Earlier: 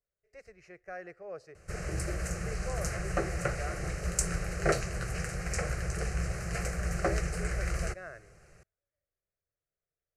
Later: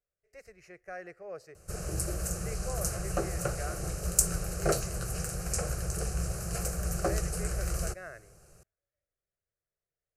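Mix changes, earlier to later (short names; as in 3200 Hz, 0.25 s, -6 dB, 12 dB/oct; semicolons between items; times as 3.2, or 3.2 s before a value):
background: add bell 2000 Hz -14 dB 0.54 oct; master: remove air absorption 62 m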